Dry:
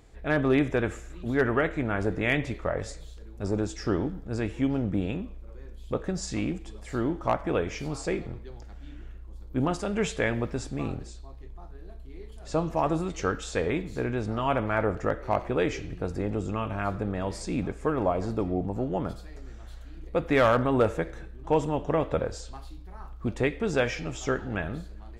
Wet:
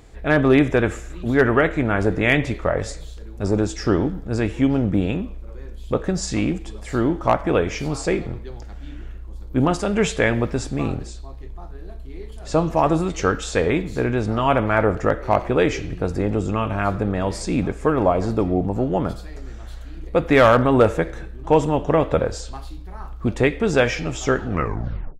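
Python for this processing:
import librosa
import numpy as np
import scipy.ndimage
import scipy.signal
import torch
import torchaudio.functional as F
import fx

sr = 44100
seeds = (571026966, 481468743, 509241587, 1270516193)

y = fx.tape_stop_end(x, sr, length_s=0.75)
y = F.gain(torch.from_numpy(y), 8.0).numpy()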